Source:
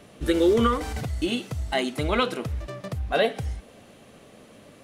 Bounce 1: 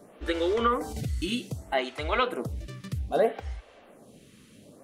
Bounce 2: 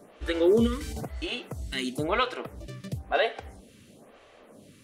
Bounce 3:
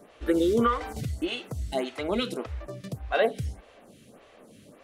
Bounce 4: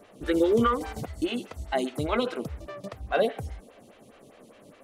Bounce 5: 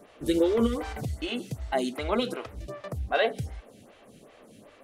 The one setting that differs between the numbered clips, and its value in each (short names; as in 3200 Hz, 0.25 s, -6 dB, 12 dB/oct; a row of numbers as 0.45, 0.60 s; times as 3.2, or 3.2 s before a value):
photocell phaser, rate: 0.63, 1, 1.7, 4.9, 2.6 Hz